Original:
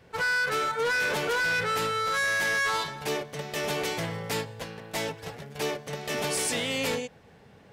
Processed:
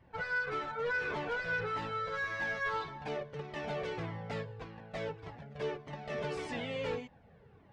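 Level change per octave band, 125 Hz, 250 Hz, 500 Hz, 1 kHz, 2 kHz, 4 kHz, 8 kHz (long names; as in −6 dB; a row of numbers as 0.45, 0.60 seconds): −5.0, −7.5, −6.5, −8.0, −9.0, −15.5, −26.0 decibels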